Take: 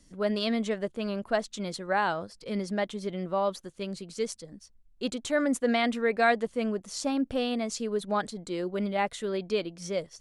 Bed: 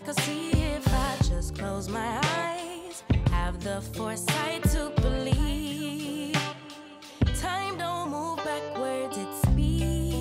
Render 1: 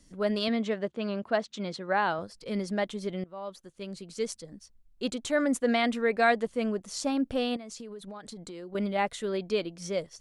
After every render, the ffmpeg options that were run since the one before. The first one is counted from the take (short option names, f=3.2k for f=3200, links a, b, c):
-filter_complex "[0:a]asettb=1/sr,asplit=3[a][b][c];[a]atrim=end=0.484[d];[b]atrim=start=0.48:end=2.19,asetpts=PTS-STARTPTS,afade=t=in:d=0.004:c=qsin,afade=t=out:st=1.706:d=0.004:c=qsin,highpass=100,lowpass=5k[e];[c]atrim=start=2.186[f];[d][e]acrossfade=d=0.004:c1=hsin:c2=qsin[g];[g][f]acrossfade=d=0.004:c1=qsin:c2=hsin,asettb=1/sr,asplit=3[h][i][j];[h]atrim=end=7.564[k];[i]atrim=start=7.56:end=8.75,asetpts=PTS-STARTPTS,afade=t=in:d=0.004:c=qsin,afade=t=out:st=1.186:d=0.004:c=qsin,acompressor=threshold=-38dB:ratio=16:attack=3.2:release=140:knee=1:detection=peak[l];[j]atrim=start=8.746[m];[k][l]acrossfade=d=0.004:c1=hsin:c2=qsin[n];[n][m]acrossfade=d=0.004:c1=qsin:c2=hsin,asplit=2[o][p];[o]atrim=end=3.24,asetpts=PTS-STARTPTS,afade=t=out:st=3.236:d=0.004:c=hsin:silence=0.112202[q];[p]atrim=start=3.24,asetpts=PTS-STARTPTS,afade=t=in:d=1.08:silence=0.112202[r];[q][r]concat=n=2:v=0:a=1"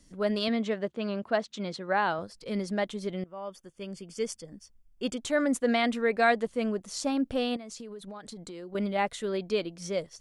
-filter_complex "[0:a]asettb=1/sr,asplit=3[a][b][c];[a]atrim=end=3.224[d];[b]atrim=start=3.22:end=5.18,asetpts=PTS-STARTPTS,afade=t=in:d=0.004:c=qsin,afade=t=out:st=1.956:d=0.004:c=qsin,asuperstop=centerf=4000:order=20:qfactor=6[e];[c]atrim=start=5.176[f];[d][e]acrossfade=d=0.004:c1=hsin:c2=qsin[g];[g][f]acrossfade=d=0.004:c1=qsin:c2=hsin"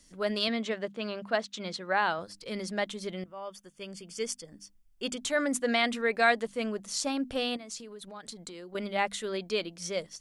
-af "tiltshelf=f=1.1k:g=-4,bandreject=f=50:t=h:w=6,bandreject=f=100:t=h:w=6,bandreject=f=150:t=h:w=6,bandreject=f=200:t=h:w=6,bandreject=f=250:t=h:w=6,bandreject=f=300:t=h:w=6"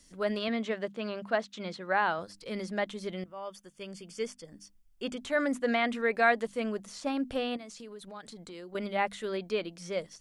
-filter_complex "[0:a]acrossover=split=2700[a][b];[b]acompressor=threshold=-46dB:ratio=4:attack=1:release=60[c];[a][c]amix=inputs=2:normalize=0"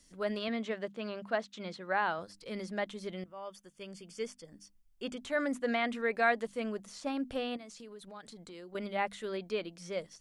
-af "volume=-3.5dB"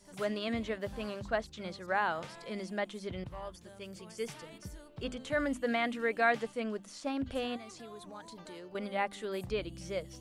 -filter_complex "[1:a]volume=-22.5dB[a];[0:a][a]amix=inputs=2:normalize=0"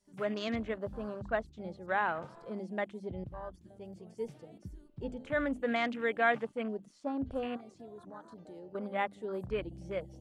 -af "afwtdn=0.00631"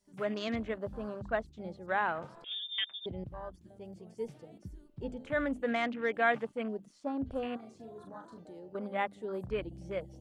-filter_complex "[0:a]asettb=1/sr,asplit=3[a][b][c];[a]atrim=end=2.444[d];[b]atrim=start=2.44:end=3.06,asetpts=PTS-STARTPTS,afade=t=in:d=0.004:c=qsin,afade=t=out:st=0.616:d=0.004:c=qsin,lowpass=f=3.2k:t=q:w=0.5098,lowpass=f=3.2k:t=q:w=0.6013,lowpass=f=3.2k:t=q:w=0.9,lowpass=f=3.2k:t=q:w=2.563,afreqshift=-3800[e];[c]atrim=start=3.056[f];[d][e]acrossfade=d=0.004:c1=hsin:c2=qsin[g];[g][f]acrossfade=d=0.004:c1=qsin:c2=hsin,asettb=1/sr,asplit=3[h][i][j];[h]atrim=end=5.714[k];[i]atrim=start=5.71:end=6.14,asetpts=PTS-STARTPTS,afade=t=in:d=0.004:c=qsin,afade=t=out:st=0.426:d=0.004:c=qsin,adynamicsmooth=sensitivity=3:basefreq=4.1k[l];[j]atrim=start=6.136[m];[k][l]acrossfade=d=0.004:c1=hsin:c2=qsin[n];[n][m]acrossfade=d=0.004:c1=qsin:c2=hsin,asettb=1/sr,asplit=3[o][p][q];[o]atrim=end=7.584[r];[p]atrim=start=7.58:end=8.42,asetpts=PTS-STARTPTS,afade=t=in:d=0.004:c=qsin,afade=t=out:st=0.836:d=0.004:c=qsin,asplit=2[s][t];[t]adelay=40,volume=-5.5dB[u];[s][u]amix=inputs=2:normalize=0,atrim=end_sample=37044[v];[q]atrim=start=8.416[w];[r][v]acrossfade=d=0.004:c1=hsin:c2=qsin[x];[x][w]acrossfade=d=0.004:c1=qsin:c2=hsin"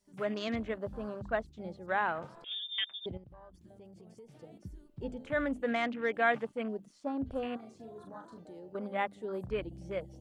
-filter_complex "[0:a]asettb=1/sr,asplit=3[a][b][c];[a]atrim=end=3.174[d];[b]atrim=start=3.17:end=4.41,asetpts=PTS-STARTPTS,afade=t=in:d=0.004:c=qsin,afade=t=out:st=1.236:d=0.004:c=qsin,acompressor=threshold=-49dB:ratio=10:attack=3.2:release=140:knee=1:detection=peak[e];[c]atrim=start=4.406[f];[d][e]acrossfade=d=0.004:c1=hsin:c2=qsin[g];[g][f]acrossfade=d=0.004:c1=qsin:c2=hsin"